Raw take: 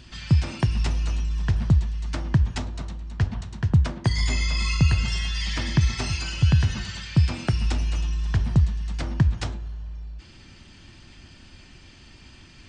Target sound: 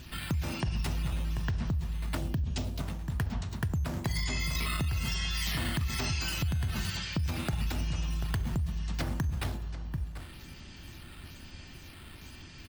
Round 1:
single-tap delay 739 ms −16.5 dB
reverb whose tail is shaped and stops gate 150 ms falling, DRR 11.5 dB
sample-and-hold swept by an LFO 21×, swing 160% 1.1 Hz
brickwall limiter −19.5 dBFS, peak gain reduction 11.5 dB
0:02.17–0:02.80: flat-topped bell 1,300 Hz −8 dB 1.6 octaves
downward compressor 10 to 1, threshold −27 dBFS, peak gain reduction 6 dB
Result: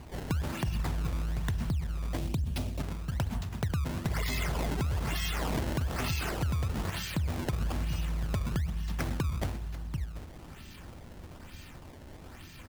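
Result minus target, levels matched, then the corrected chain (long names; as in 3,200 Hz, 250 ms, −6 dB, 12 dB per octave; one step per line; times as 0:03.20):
sample-and-hold swept by an LFO: distortion +7 dB
single-tap delay 739 ms −16.5 dB
reverb whose tail is shaped and stops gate 150 ms falling, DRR 11.5 dB
sample-and-hold swept by an LFO 4×, swing 160% 1.1 Hz
brickwall limiter −19.5 dBFS, peak gain reduction 12 dB
0:02.17–0:02.80: flat-topped bell 1,300 Hz −8 dB 1.6 octaves
downward compressor 10 to 1, threshold −27 dBFS, peak gain reduction 6 dB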